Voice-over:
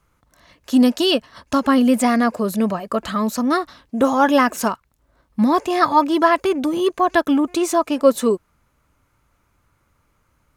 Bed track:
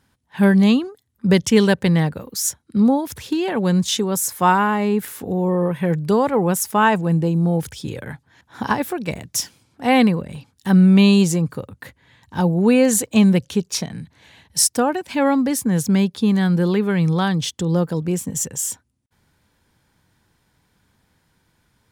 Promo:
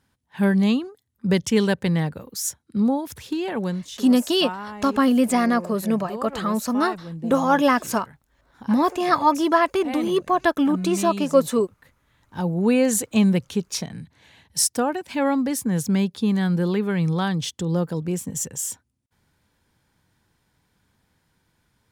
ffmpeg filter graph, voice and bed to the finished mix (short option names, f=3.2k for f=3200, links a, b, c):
-filter_complex "[0:a]adelay=3300,volume=-3dB[a];[1:a]volume=7.5dB,afade=t=out:st=3.6:d=0.23:silence=0.266073,afade=t=in:st=12.04:d=0.62:silence=0.237137[b];[a][b]amix=inputs=2:normalize=0"